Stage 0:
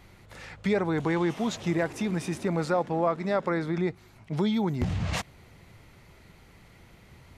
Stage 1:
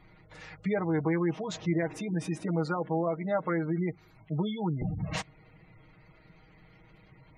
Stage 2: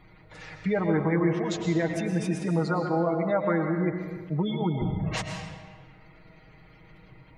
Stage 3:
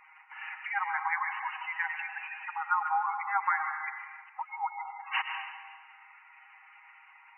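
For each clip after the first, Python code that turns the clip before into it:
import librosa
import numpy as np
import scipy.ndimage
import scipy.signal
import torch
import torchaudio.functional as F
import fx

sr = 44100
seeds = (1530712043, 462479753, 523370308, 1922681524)

y1 = fx.spec_gate(x, sr, threshold_db=-25, keep='strong')
y1 = y1 + 0.79 * np.pad(y1, (int(6.4 * sr / 1000.0), 0))[:len(y1)]
y1 = y1 * librosa.db_to_amplitude(-5.0)
y2 = fx.rev_freeverb(y1, sr, rt60_s=1.5, hf_ratio=0.8, predelay_ms=80, drr_db=4.0)
y2 = y2 * librosa.db_to_amplitude(3.0)
y3 = fx.brickwall_bandpass(y2, sr, low_hz=770.0, high_hz=3000.0)
y3 = y3 * librosa.db_to_amplitude(4.5)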